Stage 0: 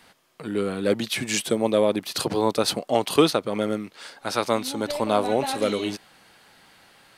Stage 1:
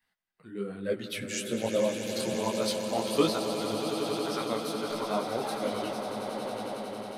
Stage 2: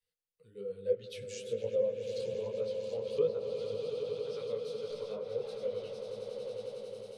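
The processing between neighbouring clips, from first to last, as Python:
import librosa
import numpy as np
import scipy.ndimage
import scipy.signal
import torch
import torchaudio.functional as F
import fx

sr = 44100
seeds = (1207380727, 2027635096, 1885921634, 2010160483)

y1 = fx.bin_expand(x, sr, power=1.5)
y1 = fx.echo_swell(y1, sr, ms=91, loudest=8, wet_db=-11)
y1 = fx.detune_double(y1, sr, cents=42)
y1 = y1 * 10.0 ** (-3.0 / 20.0)
y2 = fx.env_lowpass_down(y1, sr, base_hz=1600.0, full_db=-24.0)
y2 = fx.curve_eq(y2, sr, hz=(120.0, 330.0, 480.0, 690.0, 1100.0, 1800.0, 2600.0, 4900.0, 9200.0), db=(0, -21, 11, -19, -15, -16, -6, -2, 0))
y2 = y2 * 10.0 ** (-5.5 / 20.0)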